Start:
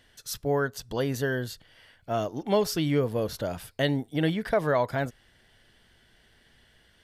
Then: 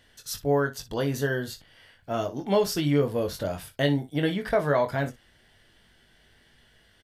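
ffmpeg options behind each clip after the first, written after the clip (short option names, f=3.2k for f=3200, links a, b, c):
-af "aecho=1:1:21|60:0.473|0.178"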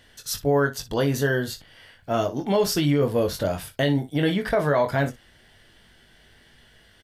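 -af "alimiter=limit=-17.5dB:level=0:latency=1:release=28,volume=5dB"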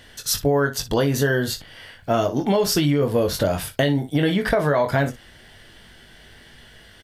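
-af "acompressor=threshold=-24dB:ratio=4,volume=7.5dB"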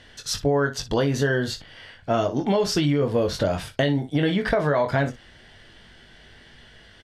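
-af "lowpass=6.4k,volume=-2dB"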